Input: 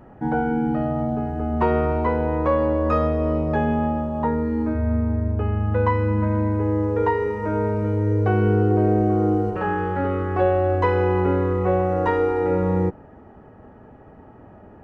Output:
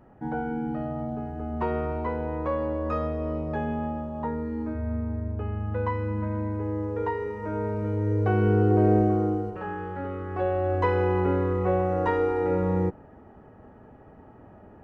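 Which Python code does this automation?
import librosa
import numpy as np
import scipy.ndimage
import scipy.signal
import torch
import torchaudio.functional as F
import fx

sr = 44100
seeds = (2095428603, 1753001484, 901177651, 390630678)

y = fx.gain(x, sr, db=fx.line((7.32, -8.0), (8.96, -1.0), (9.56, -10.0), (10.19, -10.0), (10.84, -4.0)))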